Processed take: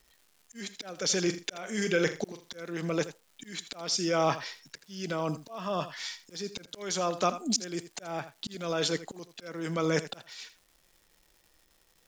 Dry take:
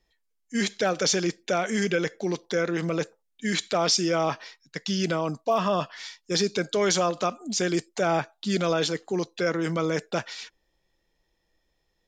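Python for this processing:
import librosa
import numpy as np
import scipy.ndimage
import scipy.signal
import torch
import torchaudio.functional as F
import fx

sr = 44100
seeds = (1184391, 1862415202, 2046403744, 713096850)

y = fx.doubler(x, sr, ms=43.0, db=-11.0, at=(1.23, 2.5))
y = fx.auto_swell(y, sr, attack_ms=760.0)
y = fx.dmg_crackle(y, sr, seeds[0], per_s=400.0, level_db=-55.0)
y = fx.high_shelf(y, sr, hz=5100.0, db=4.0)
y = y + 10.0 ** (-14.0 / 20.0) * np.pad(y, (int(82 * sr / 1000.0), 0))[:len(y)]
y = F.gain(torch.from_numpy(y), 2.5).numpy()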